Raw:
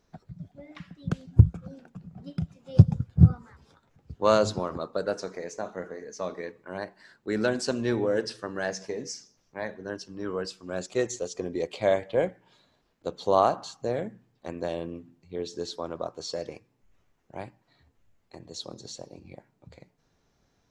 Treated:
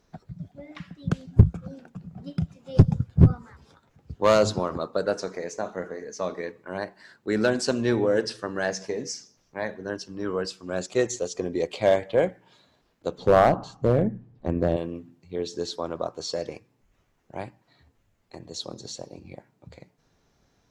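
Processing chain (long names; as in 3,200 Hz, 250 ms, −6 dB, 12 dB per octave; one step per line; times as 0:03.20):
0:13.18–0:14.77: spectral tilt −4 dB per octave
asymmetric clip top −15.5 dBFS
level +3.5 dB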